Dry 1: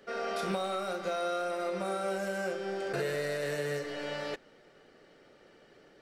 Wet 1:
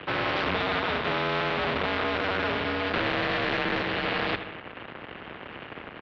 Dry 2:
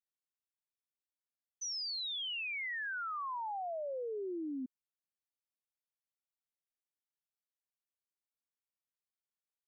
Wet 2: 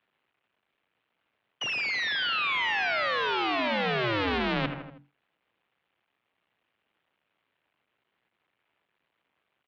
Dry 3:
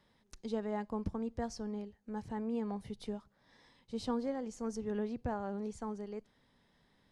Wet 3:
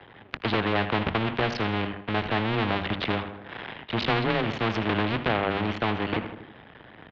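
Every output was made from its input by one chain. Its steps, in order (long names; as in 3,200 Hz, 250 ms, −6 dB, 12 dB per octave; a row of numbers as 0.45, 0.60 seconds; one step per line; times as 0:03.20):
sub-harmonics by changed cycles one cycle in 2, muted
mains-hum notches 50/100/150/200/250/300/350/400 Hz
dynamic equaliser 2,200 Hz, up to +3 dB, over −52 dBFS, Q 2.1
leveller curve on the samples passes 2
single-sideband voice off tune −110 Hz 210–3,200 Hz
repeating echo 80 ms, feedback 42%, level −17 dB
every bin compressed towards the loudest bin 2 to 1
loudness normalisation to −27 LKFS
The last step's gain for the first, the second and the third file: +4.0, +14.5, +13.5 decibels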